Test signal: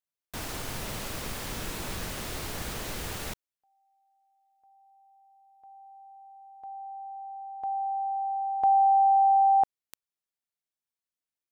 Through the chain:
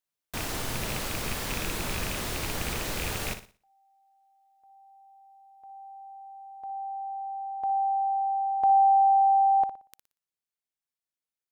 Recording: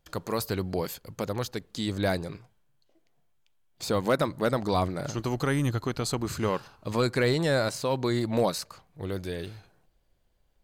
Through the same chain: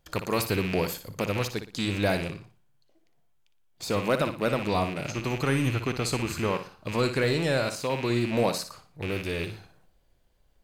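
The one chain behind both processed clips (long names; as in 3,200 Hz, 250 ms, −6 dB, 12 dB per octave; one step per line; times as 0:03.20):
loose part that buzzes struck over −36 dBFS, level −25 dBFS
flutter between parallel walls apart 10.1 metres, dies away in 0.36 s
speech leveller within 3 dB 2 s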